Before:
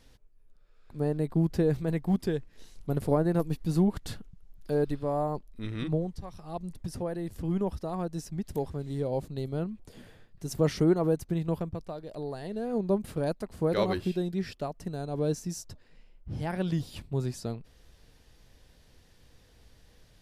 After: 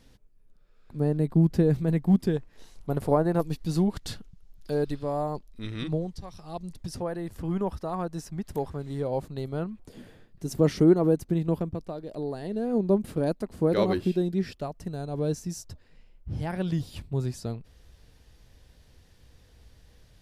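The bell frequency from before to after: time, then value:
bell +6 dB 1.6 oct
190 Hz
from 2.37 s 880 Hz
from 3.41 s 4900 Hz
from 7 s 1200 Hz
from 9.87 s 280 Hz
from 14.53 s 68 Hz

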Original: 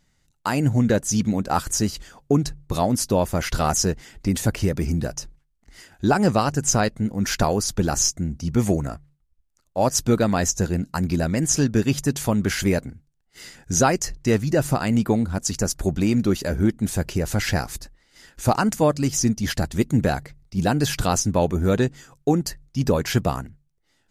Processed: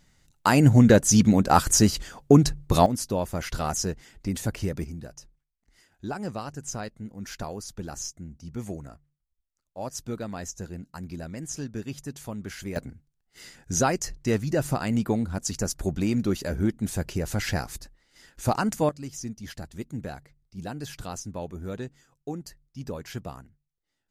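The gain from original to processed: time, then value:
+3.5 dB
from 2.86 s -7 dB
from 4.84 s -14.5 dB
from 12.76 s -5 dB
from 18.89 s -15 dB

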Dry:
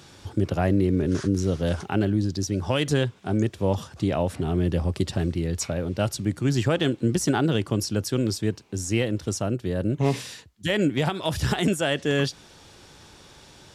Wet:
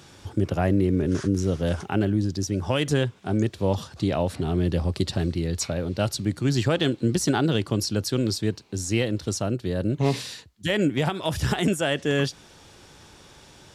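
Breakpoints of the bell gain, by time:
bell 4200 Hz 0.41 oct
3.06 s -2.5 dB
3.61 s +7 dB
10.24 s +7 dB
10.91 s -2.5 dB

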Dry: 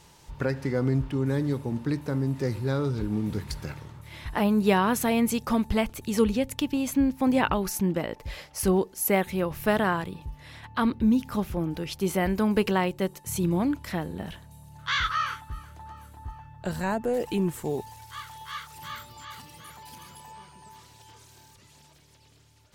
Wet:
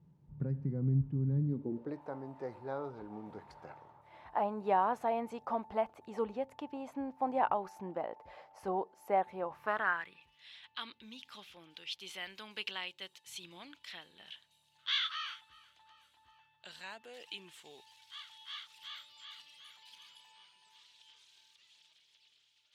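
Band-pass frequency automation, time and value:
band-pass, Q 2.9
1.44 s 160 Hz
2 s 780 Hz
9.45 s 780 Hz
10.4 s 3300 Hz

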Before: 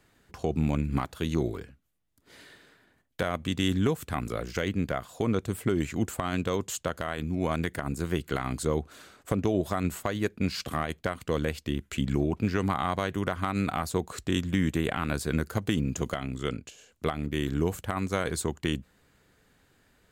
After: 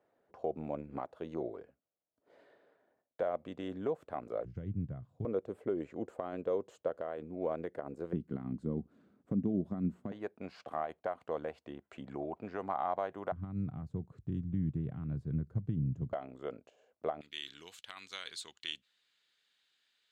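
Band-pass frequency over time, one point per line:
band-pass, Q 2.6
590 Hz
from 4.45 s 120 Hz
from 5.25 s 520 Hz
from 8.13 s 210 Hz
from 10.12 s 710 Hz
from 13.32 s 130 Hz
from 16.13 s 630 Hz
from 17.21 s 3600 Hz

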